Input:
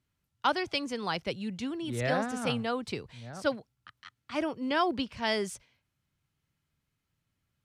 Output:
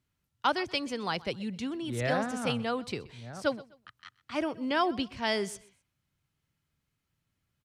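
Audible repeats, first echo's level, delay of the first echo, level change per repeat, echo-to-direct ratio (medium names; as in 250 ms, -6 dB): 2, -21.0 dB, 127 ms, -10.5 dB, -20.5 dB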